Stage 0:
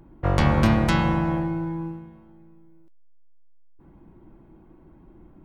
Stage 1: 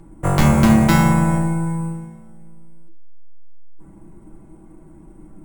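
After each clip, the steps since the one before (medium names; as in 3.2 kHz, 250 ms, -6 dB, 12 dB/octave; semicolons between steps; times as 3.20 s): sample-and-hold 5×; reverberation RT60 0.30 s, pre-delay 5 ms, DRR 4 dB; trim +3.5 dB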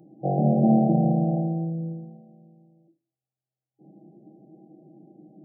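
FFT band-pass 120–810 Hz; tilt EQ +2.5 dB/octave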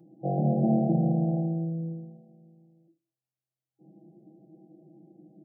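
comb 5.9 ms, depth 46%; trim -5.5 dB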